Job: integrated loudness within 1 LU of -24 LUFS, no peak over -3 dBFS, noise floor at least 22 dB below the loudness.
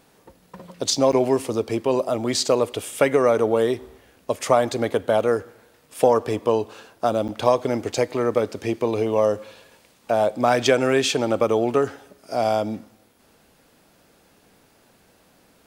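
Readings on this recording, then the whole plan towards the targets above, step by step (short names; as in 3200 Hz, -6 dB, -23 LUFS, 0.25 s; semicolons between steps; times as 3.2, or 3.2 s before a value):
dropouts 2; longest dropout 8.3 ms; loudness -22.0 LUFS; peak -2.5 dBFS; loudness target -24.0 LUFS
-> interpolate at 1.12/7.28, 8.3 ms; gain -2 dB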